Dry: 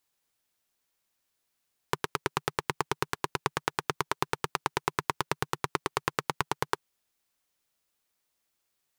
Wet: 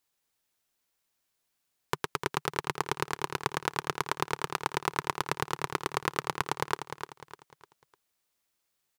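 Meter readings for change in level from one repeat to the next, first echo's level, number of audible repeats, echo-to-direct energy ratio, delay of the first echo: −8.5 dB, −8.5 dB, 4, −8.0 dB, 301 ms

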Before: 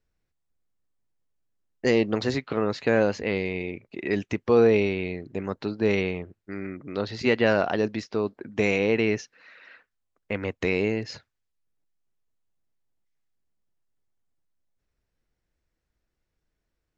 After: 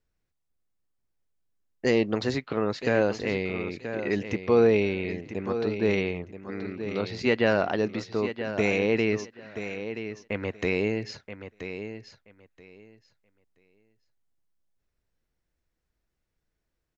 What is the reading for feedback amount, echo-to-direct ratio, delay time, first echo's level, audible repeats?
18%, −10.0 dB, 978 ms, −10.0 dB, 2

